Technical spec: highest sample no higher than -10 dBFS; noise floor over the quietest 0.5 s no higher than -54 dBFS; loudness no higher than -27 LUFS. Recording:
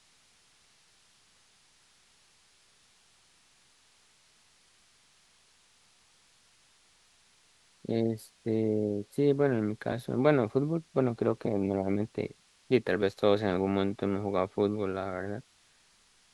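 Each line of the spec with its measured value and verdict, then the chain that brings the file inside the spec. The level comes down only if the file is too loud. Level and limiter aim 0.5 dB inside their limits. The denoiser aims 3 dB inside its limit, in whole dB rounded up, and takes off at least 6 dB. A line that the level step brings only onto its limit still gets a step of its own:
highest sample -9.5 dBFS: fail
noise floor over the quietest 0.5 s -64 dBFS: OK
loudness -30.0 LUFS: OK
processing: limiter -10.5 dBFS

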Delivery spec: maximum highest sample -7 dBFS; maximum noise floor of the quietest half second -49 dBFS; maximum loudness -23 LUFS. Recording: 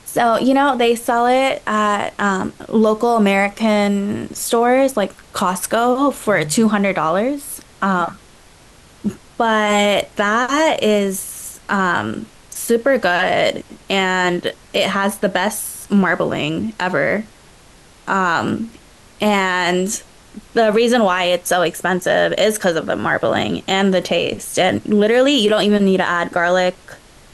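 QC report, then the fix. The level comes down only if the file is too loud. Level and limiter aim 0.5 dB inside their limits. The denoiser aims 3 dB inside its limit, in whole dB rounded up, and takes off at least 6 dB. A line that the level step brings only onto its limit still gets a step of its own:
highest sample -5.5 dBFS: fail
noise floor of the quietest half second -46 dBFS: fail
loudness -17.0 LUFS: fail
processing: gain -6.5 dB

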